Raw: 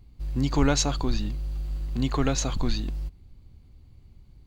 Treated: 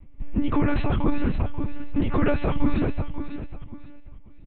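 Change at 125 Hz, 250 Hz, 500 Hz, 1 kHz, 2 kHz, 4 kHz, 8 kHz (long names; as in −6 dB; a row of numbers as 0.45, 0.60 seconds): +1.5 dB, +4.0 dB, +3.0 dB, +1.5 dB, +2.5 dB, −11.0 dB, below −40 dB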